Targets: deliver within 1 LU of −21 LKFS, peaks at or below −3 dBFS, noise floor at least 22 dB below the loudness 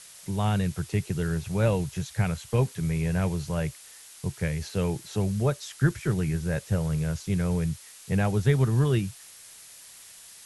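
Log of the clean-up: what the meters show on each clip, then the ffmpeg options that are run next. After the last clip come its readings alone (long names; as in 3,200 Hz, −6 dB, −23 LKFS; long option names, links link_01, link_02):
background noise floor −49 dBFS; target noise floor −50 dBFS; integrated loudness −27.5 LKFS; sample peak −10.5 dBFS; target loudness −21.0 LKFS
→ -af "afftdn=noise_reduction=6:noise_floor=-49"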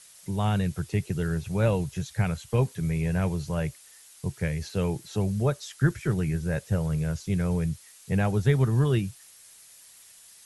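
background noise floor −52 dBFS; integrated loudness −27.5 LKFS; sample peak −10.5 dBFS; target loudness −21.0 LKFS
→ -af "volume=6.5dB"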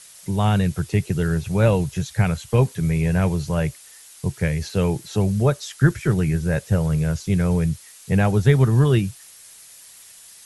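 integrated loudness −21.0 LKFS; sample peak −4.0 dBFS; background noise floor −46 dBFS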